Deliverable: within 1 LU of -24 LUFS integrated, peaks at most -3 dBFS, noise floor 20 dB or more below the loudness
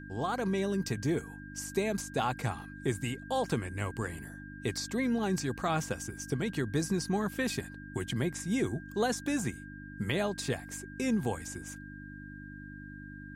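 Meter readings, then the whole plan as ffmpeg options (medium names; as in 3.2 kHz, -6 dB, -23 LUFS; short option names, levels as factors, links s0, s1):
hum 50 Hz; highest harmonic 300 Hz; hum level -45 dBFS; steady tone 1.6 kHz; tone level -49 dBFS; loudness -33.5 LUFS; peak level -17.0 dBFS; loudness target -24.0 LUFS
-> -af "bandreject=f=50:t=h:w=4,bandreject=f=100:t=h:w=4,bandreject=f=150:t=h:w=4,bandreject=f=200:t=h:w=4,bandreject=f=250:t=h:w=4,bandreject=f=300:t=h:w=4"
-af "bandreject=f=1600:w=30"
-af "volume=2.99"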